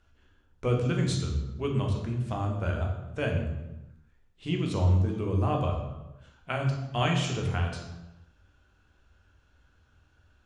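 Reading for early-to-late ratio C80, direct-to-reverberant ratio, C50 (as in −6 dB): 7.5 dB, 1.0 dB, 5.0 dB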